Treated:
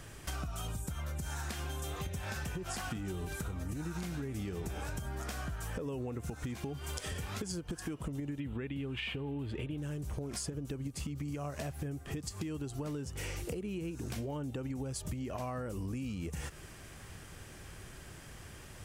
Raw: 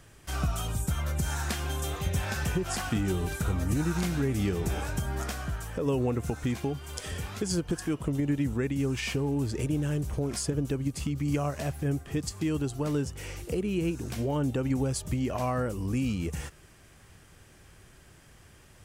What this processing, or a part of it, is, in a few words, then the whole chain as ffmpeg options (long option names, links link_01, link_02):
serial compression, peaks first: -filter_complex "[0:a]asettb=1/sr,asplit=3[link_01][link_02][link_03];[link_01]atrim=end=8.404[link_04];[link_02]atrim=start=8.4:end=9.78,asetpts=PTS-STARTPTS,afade=type=in:duration=0.004:curve=qsin,afade=type=out:start_time=1.376:duration=0.004:curve=qsin,highshelf=frequency=4300:width_type=q:width=3:gain=-10.5[link_05];[link_03]atrim=start=9.776[link_06];[link_04][link_05]acrossfade=duration=0.004:curve1=hsin:curve2=qsin[link_07];[link_07][link_06]acrossfade=duration=0.004:curve1=qsin:curve2=hsin,acompressor=threshold=-37dB:ratio=6,acompressor=threshold=-42dB:ratio=2.5,volume=5dB"